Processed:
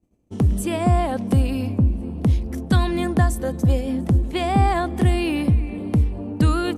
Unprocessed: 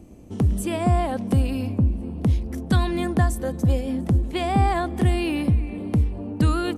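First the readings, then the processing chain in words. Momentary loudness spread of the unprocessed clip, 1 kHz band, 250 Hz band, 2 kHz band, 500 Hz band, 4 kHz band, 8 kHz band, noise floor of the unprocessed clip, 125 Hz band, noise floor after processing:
3 LU, +2.0 dB, +2.0 dB, +2.0 dB, +2.0 dB, +2.0 dB, +2.0 dB, -35 dBFS, +2.0 dB, -36 dBFS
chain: expander -31 dBFS; gain +2 dB

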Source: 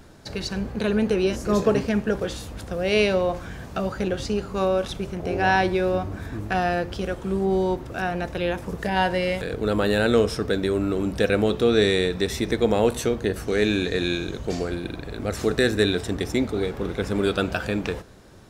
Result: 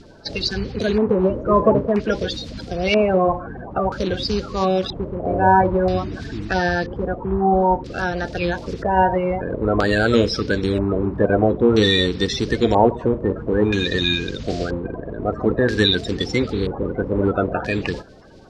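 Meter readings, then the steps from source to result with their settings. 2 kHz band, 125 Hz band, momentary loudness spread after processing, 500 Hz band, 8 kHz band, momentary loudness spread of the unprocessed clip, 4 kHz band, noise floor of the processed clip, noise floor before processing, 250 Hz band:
+2.5 dB, +5.0 dB, 10 LU, +3.0 dB, -2.5 dB, 9 LU, +6.0 dB, -35 dBFS, -38 dBFS, +3.5 dB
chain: bin magnitudes rounded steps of 30 dB; LFO low-pass square 0.51 Hz 960–4700 Hz; gain +3.5 dB

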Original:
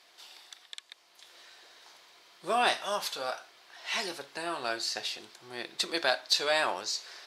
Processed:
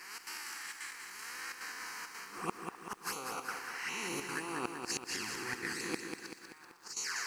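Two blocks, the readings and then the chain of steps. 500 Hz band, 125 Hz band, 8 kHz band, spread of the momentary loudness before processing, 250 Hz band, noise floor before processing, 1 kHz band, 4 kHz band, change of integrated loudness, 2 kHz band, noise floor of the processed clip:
-12.0 dB, +4.5 dB, -0.5 dB, 19 LU, 0.0 dB, -62 dBFS, -8.5 dB, -11.5 dB, -9.0 dB, -4.5 dB, -55 dBFS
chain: time blur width 0.181 s; flipped gate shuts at -24 dBFS, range -39 dB; envelope flanger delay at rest 6.5 ms, full sweep at -37.5 dBFS; step gate "xx.xxxxx.xxxxxx" 168 bpm -12 dB; reverse; compressor 4:1, threshold -53 dBFS, peak gain reduction 14 dB; reverse; harmonic-percussive split percussive +8 dB; fixed phaser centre 1500 Hz, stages 4; delay with a stepping band-pass 0.126 s, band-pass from 360 Hz, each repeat 1.4 oct, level -12 dB; lo-fi delay 0.192 s, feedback 55%, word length 13-bit, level -5.5 dB; gain +16.5 dB

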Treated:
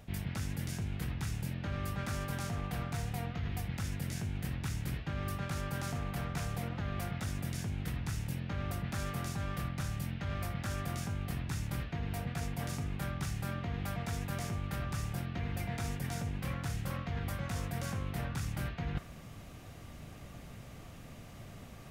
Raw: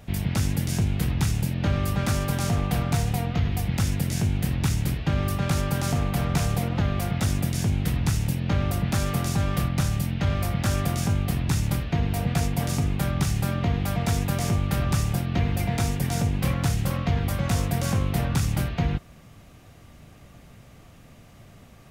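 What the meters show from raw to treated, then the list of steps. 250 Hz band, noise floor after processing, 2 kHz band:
-13.0 dB, -50 dBFS, -8.5 dB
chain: dynamic EQ 1600 Hz, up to +5 dB, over -48 dBFS, Q 1.2; reverse; compressor 12:1, threshold -33 dBFS, peak gain reduction 15.5 dB; reverse

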